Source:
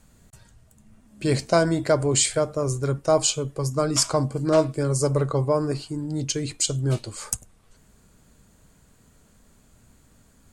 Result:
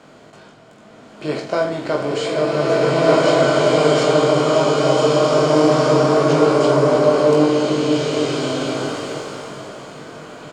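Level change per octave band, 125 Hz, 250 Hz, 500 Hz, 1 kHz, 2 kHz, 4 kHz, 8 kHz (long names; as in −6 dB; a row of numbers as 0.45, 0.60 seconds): +2.0, +9.0, +10.5, +11.5, +11.0, +5.5, −6.0 decibels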